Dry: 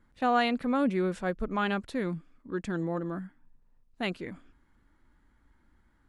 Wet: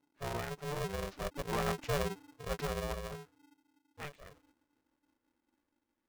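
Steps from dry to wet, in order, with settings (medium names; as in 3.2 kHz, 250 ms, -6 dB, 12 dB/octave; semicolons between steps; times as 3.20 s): pitch bend over the whole clip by -12 st ending unshifted; Doppler pass-by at 2.20 s, 10 m/s, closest 4.9 m; polarity switched at an audio rate 290 Hz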